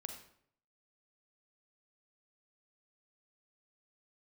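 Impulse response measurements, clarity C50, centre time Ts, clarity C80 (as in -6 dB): 6.5 dB, 21 ms, 9.5 dB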